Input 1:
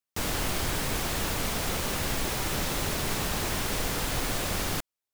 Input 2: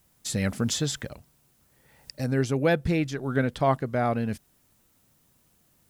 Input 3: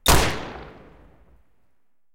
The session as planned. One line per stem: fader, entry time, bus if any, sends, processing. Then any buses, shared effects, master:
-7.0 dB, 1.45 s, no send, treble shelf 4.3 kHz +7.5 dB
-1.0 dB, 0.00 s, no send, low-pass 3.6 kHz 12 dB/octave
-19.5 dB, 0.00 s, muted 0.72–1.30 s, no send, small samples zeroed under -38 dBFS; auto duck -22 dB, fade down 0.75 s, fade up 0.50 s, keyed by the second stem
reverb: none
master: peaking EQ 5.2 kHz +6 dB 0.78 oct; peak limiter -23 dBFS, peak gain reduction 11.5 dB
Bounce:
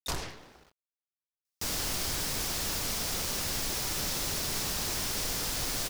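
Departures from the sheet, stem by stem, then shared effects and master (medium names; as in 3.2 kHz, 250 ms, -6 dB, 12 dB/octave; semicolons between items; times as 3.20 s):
stem 2: muted; master: missing peak limiter -23 dBFS, peak gain reduction 11.5 dB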